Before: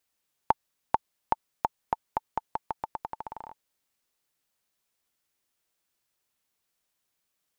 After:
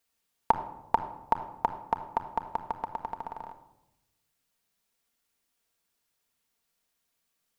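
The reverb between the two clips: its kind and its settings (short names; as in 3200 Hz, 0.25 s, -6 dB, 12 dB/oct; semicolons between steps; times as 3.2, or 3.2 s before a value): shoebox room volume 3100 m³, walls furnished, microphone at 1.7 m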